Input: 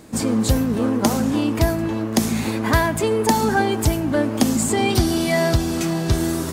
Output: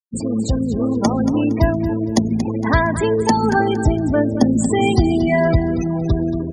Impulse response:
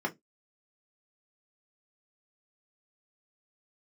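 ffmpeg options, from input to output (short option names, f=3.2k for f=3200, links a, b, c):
-filter_complex "[0:a]asettb=1/sr,asplit=3[a][b][c];[a]atrim=end=3.564[d];[b]atrim=start=3.56:end=5.89,asetpts=PTS-STARTPTS,afade=t=in:d=0.004:c=qsin,afade=t=out:st=2.326:d=0.004:c=qsin,highshelf=f=2k:g=-3.5[e];[c]atrim=start=5.886[f];[d][e]acrossfade=d=0.004:c1=hsin:c2=qsin[g];[g][f]acrossfade=d=0.004:c1=qsin:c2=hsin,afftfilt=real='re*gte(hypot(re,im),0.1)':imag='im*gte(hypot(re,im),0.1)':win_size=1024:overlap=0.75,dynaudnorm=f=310:g=7:m=14dB,aecho=1:1:231|462|693:0.251|0.0703|0.0197,volume=-1dB" -ar 48000 -c:a libopus -b:a 64k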